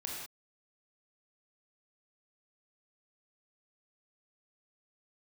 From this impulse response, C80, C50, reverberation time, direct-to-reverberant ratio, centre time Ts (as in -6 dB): 2.0 dB, -0.5 dB, not exponential, -3.0 dB, 67 ms